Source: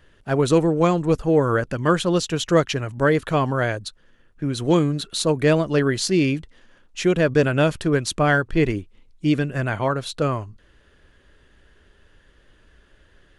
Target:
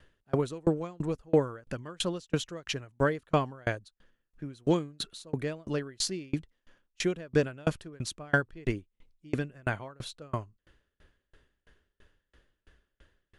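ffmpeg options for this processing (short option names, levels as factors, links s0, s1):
-af "aeval=exprs='val(0)*pow(10,-34*if(lt(mod(3*n/s,1),2*abs(3)/1000),1-mod(3*n/s,1)/(2*abs(3)/1000),(mod(3*n/s,1)-2*abs(3)/1000)/(1-2*abs(3)/1000))/20)':c=same,volume=0.794"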